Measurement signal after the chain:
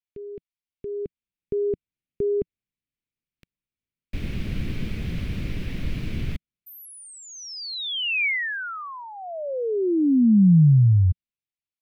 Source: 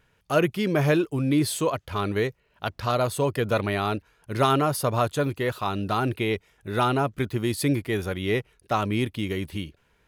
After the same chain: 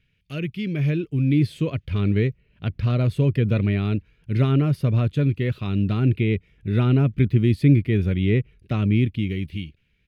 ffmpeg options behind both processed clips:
-filter_complex "[0:a]acrossover=split=1400[s0][s1];[s0]dynaudnorm=f=260:g=9:m=5.01[s2];[s1]alimiter=level_in=1.19:limit=0.0631:level=0:latency=1:release=353,volume=0.841[s3];[s2][s3]amix=inputs=2:normalize=0,firequalizer=gain_entry='entry(170,0);entry(320,-8);entry(840,-26);entry(2300,2);entry(7200,-15)':delay=0.05:min_phase=1"

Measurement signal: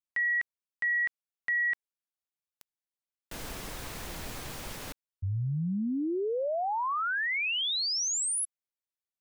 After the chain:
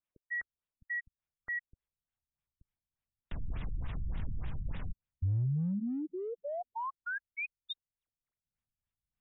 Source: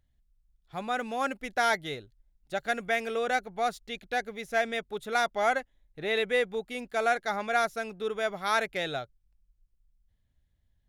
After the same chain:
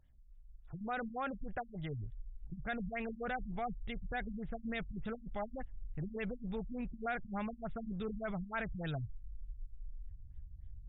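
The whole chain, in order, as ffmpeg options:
-af "asubboost=boost=11.5:cutoff=120,acompressor=threshold=0.00794:ratio=2.5:attack=0.38:release=23:knee=6:detection=peak,afftfilt=real='re*lt(b*sr/1024,210*pow(3900/210,0.5+0.5*sin(2*PI*3.4*pts/sr)))':imag='im*lt(b*sr/1024,210*pow(3900/210,0.5+0.5*sin(2*PI*3.4*pts/sr)))':win_size=1024:overlap=0.75,volume=1.5"

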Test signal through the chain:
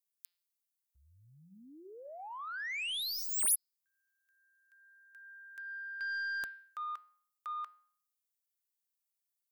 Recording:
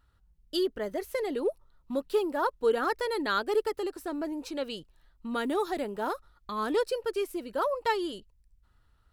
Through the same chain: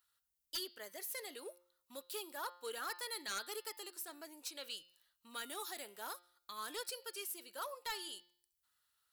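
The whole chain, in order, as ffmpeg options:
-af "aderivative,bandreject=f=176.2:t=h:w=4,bandreject=f=352.4:t=h:w=4,bandreject=f=528.6:t=h:w=4,bandreject=f=704.8:t=h:w=4,bandreject=f=881:t=h:w=4,bandreject=f=1057.2:t=h:w=4,bandreject=f=1233.4:t=h:w=4,bandreject=f=1409.6:t=h:w=4,bandreject=f=1585.8:t=h:w=4,bandreject=f=1762:t=h:w=4,bandreject=f=1938.2:t=h:w=4,bandreject=f=2114.4:t=h:w=4,bandreject=f=2290.6:t=h:w=4,bandreject=f=2466.8:t=h:w=4,bandreject=f=2643:t=h:w=4,bandreject=f=2819.2:t=h:w=4,bandreject=f=2995.4:t=h:w=4,bandreject=f=3171.6:t=h:w=4,bandreject=f=3347.8:t=h:w=4,bandreject=f=3524:t=h:w=4,bandreject=f=3700.2:t=h:w=4,bandreject=f=3876.4:t=h:w=4,bandreject=f=4052.6:t=h:w=4,bandreject=f=4228.8:t=h:w=4,bandreject=f=4405:t=h:w=4,bandreject=f=4581.2:t=h:w=4,bandreject=f=4757.4:t=h:w=4,bandreject=f=4933.6:t=h:w=4,bandreject=f=5109.8:t=h:w=4,aeval=exprs='0.1*(cos(1*acos(clip(val(0)/0.1,-1,1)))-cos(1*PI/2))+0.02*(cos(3*acos(clip(val(0)/0.1,-1,1)))-cos(3*PI/2))+0.0251*(cos(7*acos(clip(val(0)/0.1,-1,1)))-cos(7*PI/2))+0.000708*(cos(8*acos(clip(val(0)/0.1,-1,1)))-cos(8*PI/2))':c=same,volume=1.12"

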